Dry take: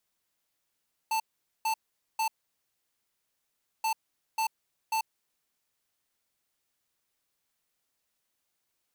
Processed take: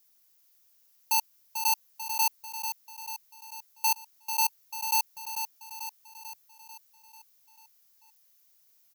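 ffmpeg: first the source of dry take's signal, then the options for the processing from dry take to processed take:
-f lavfi -i "aevalsrc='0.0398*(2*lt(mod(887*t,1),0.5)-1)*clip(min(mod(mod(t,2.73),0.54),0.09-mod(mod(t,2.73),0.54))/0.005,0,1)*lt(mod(t,2.73),1.62)':d=5.46:s=44100"
-filter_complex "[0:a]highshelf=f=3.1k:g=8.5,aexciter=amount=1.6:drive=4:freq=4.9k,asplit=2[a][b];[b]aecho=0:1:442|884|1326|1768|2210|2652|3094:0.398|0.227|0.129|0.0737|0.042|0.024|0.0137[c];[a][c]amix=inputs=2:normalize=0"

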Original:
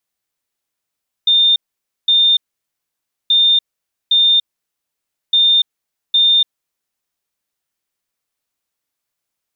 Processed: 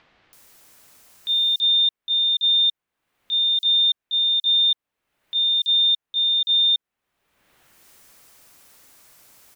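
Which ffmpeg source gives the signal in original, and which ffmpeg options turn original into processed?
-f lavfi -i "aevalsrc='0.376*sin(2*PI*3620*t)*clip(min(mod(mod(t,2.03),0.81),0.29-mod(mod(t,2.03),0.81))/0.005,0,1)*lt(mod(t,2.03),1.62)':d=6.09:s=44100"
-filter_complex "[0:a]agate=range=-11dB:threshold=-13dB:ratio=16:detection=peak,acompressor=mode=upward:threshold=-22dB:ratio=2.5,acrossover=split=3400[a][b];[b]adelay=330[c];[a][c]amix=inputs=2:normalize=0"

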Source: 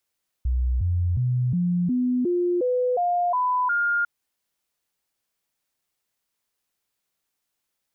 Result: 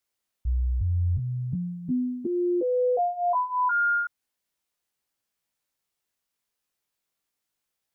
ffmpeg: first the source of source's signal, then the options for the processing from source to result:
-f lavfi -i "aevalsrc='0.106*clip(min(mod(t,0.36),0.36-mod(t,0.36))/0.005,0,1)*sin(2*PI*62.4*pow(2,floor(t/0.36)/2)*mod(t,0.36))':d=3.6:s=44100"
-af "flanger=delay=17.5:depth=3.7:speed=0.39"

